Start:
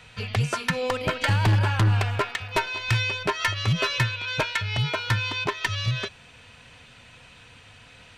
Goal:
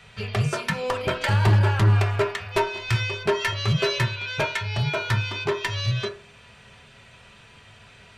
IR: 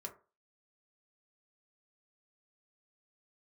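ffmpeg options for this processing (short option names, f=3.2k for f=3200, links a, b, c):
-filter_complex "[1:a]atrim=start_sample=2205[a];[0:a][a]afir=irnorm=-1:irlink=0,volume=4dB"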